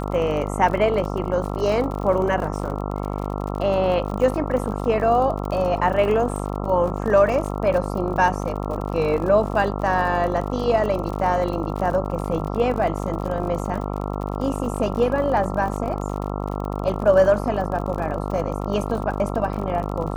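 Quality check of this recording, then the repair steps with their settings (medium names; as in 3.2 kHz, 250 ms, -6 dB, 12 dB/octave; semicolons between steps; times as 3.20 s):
buzz 50 Hz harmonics 27 -27 dBFS
crackle 54 per s -29 dBFS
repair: de-click; de-hum 50 Hz, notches 27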